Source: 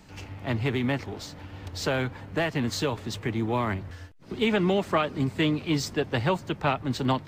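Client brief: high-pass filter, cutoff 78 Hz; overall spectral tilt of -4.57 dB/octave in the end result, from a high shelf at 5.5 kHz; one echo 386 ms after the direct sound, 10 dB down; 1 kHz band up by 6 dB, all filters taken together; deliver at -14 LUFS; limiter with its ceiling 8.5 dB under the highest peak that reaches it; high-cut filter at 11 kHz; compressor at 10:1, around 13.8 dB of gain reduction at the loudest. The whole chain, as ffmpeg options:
-af "highpass=78,lowpass=11000,equalizer=f=1000:t=o:g=7.5,highshelf=f=5500:g=-3,acompressor=threshold=0.0316:ratio=10,alimiter=level_in=1.26:limit=0.0631:level=0:latency=1,volume=0.794,aecho=1:1:386:0.316,volume=13.3"

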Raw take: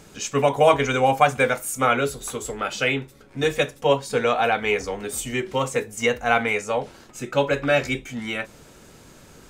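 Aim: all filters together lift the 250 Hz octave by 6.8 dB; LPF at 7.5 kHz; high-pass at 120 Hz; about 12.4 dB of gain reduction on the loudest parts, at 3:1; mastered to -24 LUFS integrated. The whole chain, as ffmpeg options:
-af "highpass=120,lowpass=7500,equalizer=f=250:t=o:g=8,acompressor=threshold=0.0398:ratio=3,volume=2"

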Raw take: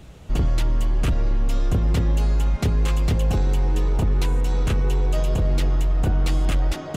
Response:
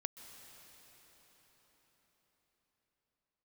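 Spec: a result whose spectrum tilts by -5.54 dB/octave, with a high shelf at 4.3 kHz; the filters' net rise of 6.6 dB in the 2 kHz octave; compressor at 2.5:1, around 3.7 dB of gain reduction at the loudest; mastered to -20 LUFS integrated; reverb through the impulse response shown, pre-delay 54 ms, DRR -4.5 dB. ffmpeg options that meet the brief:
-filter_complex "[0:a]equalizer=f=2000:t=o:g=7.5,highshelf=f=4300:g=4,acompressor=threshold=0.0794:ratio=2.5,asplit=2[s0][s1];[1:a]atrim=start_sample=2205,adelay=54[s2];[s1][s2]afir=irnorm=-1:irlink=0,volume=2.11[s3];[s0][s3]amix=inputs=2:normalize=0,volume=1.19"

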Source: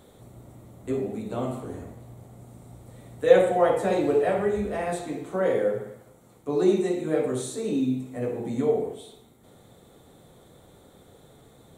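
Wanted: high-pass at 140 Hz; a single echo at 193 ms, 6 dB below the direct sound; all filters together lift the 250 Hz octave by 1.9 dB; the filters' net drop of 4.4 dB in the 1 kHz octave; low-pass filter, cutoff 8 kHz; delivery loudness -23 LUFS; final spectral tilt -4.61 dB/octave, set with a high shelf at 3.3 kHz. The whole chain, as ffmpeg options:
-af "highpass=140,lowpass=8000,equalizer=f=250:t=o:g=3.5,equalizer=f=1000:t=o:g=-8.5,highshelf=f=3300:g=7.5,aecho=1:1:193:0.501,volume=1.26"

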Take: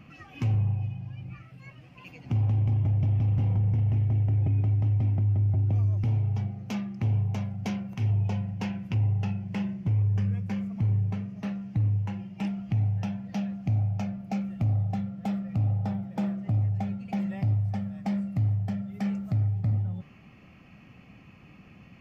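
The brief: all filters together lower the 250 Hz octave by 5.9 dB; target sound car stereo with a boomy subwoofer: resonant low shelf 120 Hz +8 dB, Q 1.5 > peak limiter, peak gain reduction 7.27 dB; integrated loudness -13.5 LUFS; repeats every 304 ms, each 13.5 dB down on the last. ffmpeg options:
-af "lowshelf=f=120:t=q:w=1.5:g=8,equalizer=f=250:t=o:g=-7.5,aecho=1:1:304|608:0.211|0.0444,volume=4.22,alimiter=limit=0.501:level=0:latency=1"

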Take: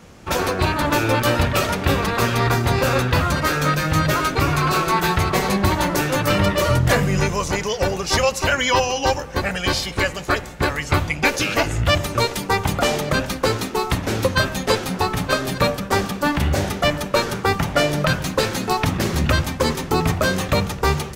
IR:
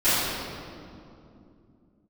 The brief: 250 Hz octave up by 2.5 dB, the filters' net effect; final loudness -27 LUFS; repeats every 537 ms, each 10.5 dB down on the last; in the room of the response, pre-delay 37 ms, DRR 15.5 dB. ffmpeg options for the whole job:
-filter_complex "[0:a]equalizer=f=250:t=o:g=3.5,aecho=1:1:537|1074|1611:0.299|0.0896|0.0269,asplit=2[s0][s1];[1:a]atrim=start_sample=2205,adelay=37[s2];[s1][s2]afir=irnorm=-1:irlink=0,volume=0.02[s3];[s0][s3]amix=inputs=2:normalize=0,volume=0.398"

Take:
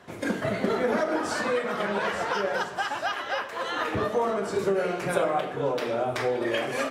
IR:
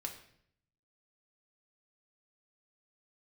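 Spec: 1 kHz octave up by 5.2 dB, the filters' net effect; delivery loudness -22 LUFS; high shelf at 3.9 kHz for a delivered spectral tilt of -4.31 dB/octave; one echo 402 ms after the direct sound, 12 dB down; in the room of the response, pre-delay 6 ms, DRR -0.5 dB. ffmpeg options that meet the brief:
-filter_complex "[0:a]equalizer=f=1000:t=o:g=6.5,highshelf=f=3900:g=5,aecho=1:1:402:0.251,asplit=2[s0][s1];[1:a]atrim=start_sample=2205,adelay=6[s2];[s1][s2]afir=irnorm=-1:irlink=0,volume=1.19[s3];[s0][s3]amix=inputs=2:normalize=0,volume=0.944"

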